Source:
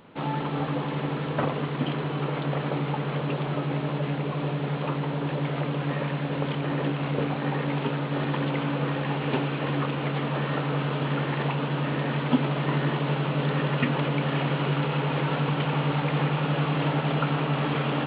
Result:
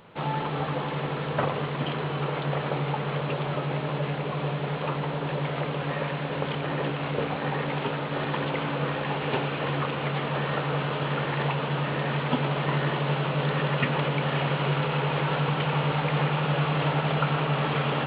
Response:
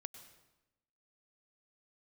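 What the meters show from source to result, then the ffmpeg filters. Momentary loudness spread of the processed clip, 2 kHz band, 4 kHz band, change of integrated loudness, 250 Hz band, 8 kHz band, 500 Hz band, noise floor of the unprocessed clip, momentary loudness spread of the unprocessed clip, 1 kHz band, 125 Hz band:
4 LU, +1.5 dB, +2.0 dB, -0.5 dB, -3.5 dB, n/a, +0.5 dB, -31 dBFS, 3 LU, +1.5 dB, -1.0 dB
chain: -filter_complex "[0:a]equalizer=f=270:t=o:w=0.51:g=-10,asplit=2[a][b];[1:a]atrim=start_sample=2205[c];[b][c]afir=irnorm=-1:irlink=0,volume=9.5dB[d];[a][d]amix=inputs=2:normalize=0,volume=-7dB"

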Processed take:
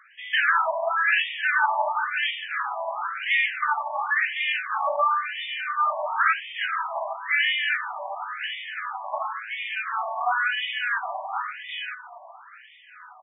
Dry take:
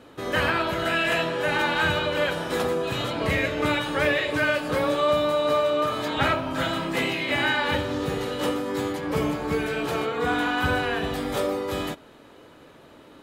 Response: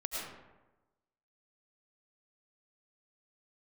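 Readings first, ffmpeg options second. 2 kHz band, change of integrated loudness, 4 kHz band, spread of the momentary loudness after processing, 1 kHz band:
+2.5 dB, -0.5 dB, -1.0 dB, 10 LU, +2.5 dB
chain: -af "acrusher=bits=3:mode=log:mix=0:aa=0.000001,aecho=1:1:1196|2392|3588:0.141|0.0396|0.0111,afftfilt=real='re*between(b*sr/1024,800*pow(2600/800,0.5+0.5*sin(2*PI*0.96*pts/sr))/1.41,800*pow(2600/800,0.5+0.5*sin(2*PI*0.96*pts/sr))*1.41)':imag='im*between(b*sr/1024,800*pow(2600/800,0.5+0.5*sin(2*PI*0.96*pts/sr))/1.41,800*pow(2600/800,0.5+0.5*sin(2*PI*0.96*pts/sr))*1.41)':win_size=1024:overlap=0.75,volume=6dB"

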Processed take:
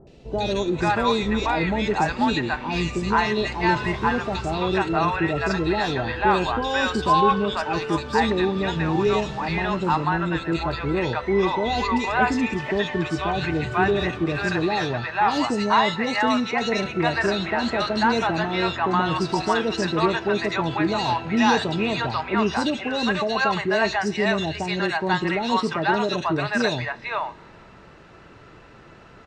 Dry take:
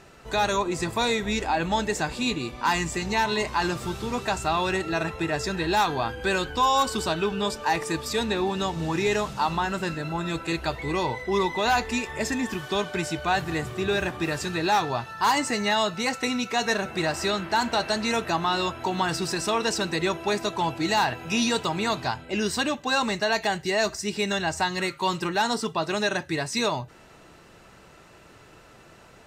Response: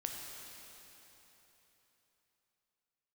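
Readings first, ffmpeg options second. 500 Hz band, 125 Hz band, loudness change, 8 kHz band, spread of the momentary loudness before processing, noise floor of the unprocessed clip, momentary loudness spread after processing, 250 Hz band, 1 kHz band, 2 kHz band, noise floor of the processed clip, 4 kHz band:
+3.5 dB, +5.0 dB, +3.0 dB, -7.5 dB, 5 LU, -51 dBFS, 4 LU, +5.0 dB, +3.0 dB, +3.0 dB, -47 dBFS, -0.5 dB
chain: -filter_complex "[0:a]lowpass=3.5k,acrossover=split=680|2700[a][b][c];[c]adelay=70[d];[b]adelay=490[e];[a][e][d]amix=inputs=3:normalize=0,asplit=2[f][g];[1:a]atrim=start_sample=2205,asetrate=66150,aresample=44100[h];[g][h]afir=irnorm=-1:irlink=0,volume=-15dB[i];[f][i]amix=inputs=2:normalize=0,volume=4.5dB"

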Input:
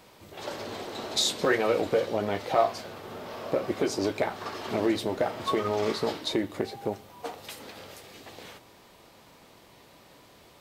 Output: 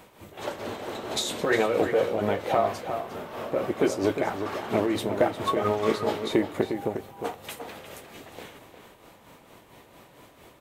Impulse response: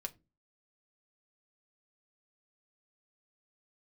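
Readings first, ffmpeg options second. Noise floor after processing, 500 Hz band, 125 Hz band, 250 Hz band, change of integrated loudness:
-55 dBFS, +2.5 dB, +3.0 dB, +2.5 dB, +1.5 dB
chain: -filter_complex "[0:a]equalizer=f=4.8k:t=o:w=0.72:g=-8.5,tremolo=f=4.4:d=0.58,asplit=2[a][b];[b]adelay=355.7,volume=-8dB,highshelf=f=4k:g=-8[c];[a][c]amix=inputs=2:normalize=0,volume=5dB"

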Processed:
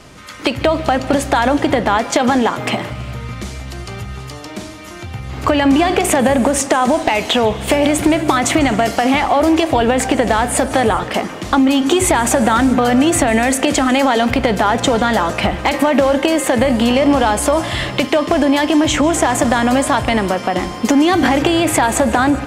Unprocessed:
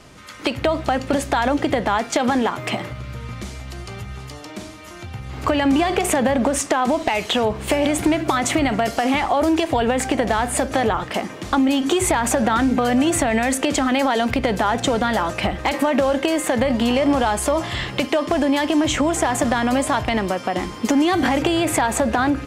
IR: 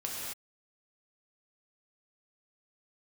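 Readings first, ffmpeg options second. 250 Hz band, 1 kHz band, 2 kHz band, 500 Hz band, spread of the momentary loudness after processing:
+5.0 dB, +5.0 dB, +5.0 dB, +5.0 dB, 13 LU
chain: -filter_complex "[0:a]asplit=2[a][b];[1:a]atrim=start_sample=2205,adelay=147[c];[b][c]afir=irnorm=-1:irlink=0,volume=-18.5dB[d];[a][d]amix=inputs=2:normalize=0,volume=5dB"

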